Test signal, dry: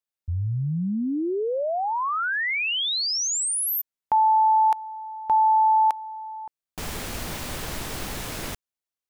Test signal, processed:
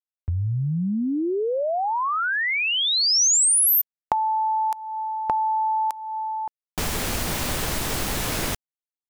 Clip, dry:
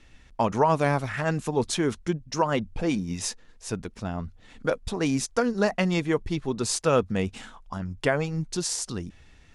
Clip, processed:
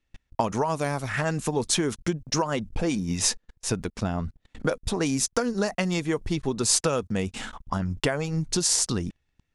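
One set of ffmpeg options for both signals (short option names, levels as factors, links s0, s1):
-filter_complex "[0:a]agate=range=0.0316:threshold=0.00398:ratio=16:release=21:detection=rms,acrossover=split=5500[s0][s1];[s0]acompressor=threshold=0.0316:ratio=6:attack=14:release=476:knee=1:detection=peak[s2];[s2][s1]amix=inputs=2:normalize=0,volume=2.37"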